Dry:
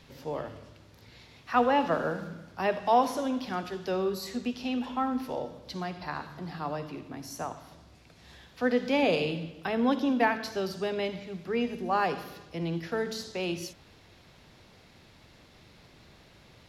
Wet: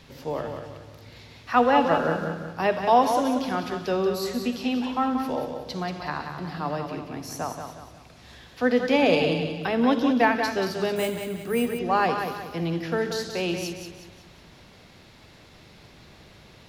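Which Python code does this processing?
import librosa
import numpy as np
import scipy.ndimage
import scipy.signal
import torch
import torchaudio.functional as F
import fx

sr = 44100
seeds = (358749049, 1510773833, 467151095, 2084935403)

p1 = x + fx.echo_feedback(x, sr, ms=183, feedback_pct=40, wet_db=-7.0, dry=0)
p2 = fx.resample_bad(p1, sr, factor=4, down='filtered', up='hold', at=(10.96, 11.79))
y = p2 * librosa.db_to_amplitude(4.5)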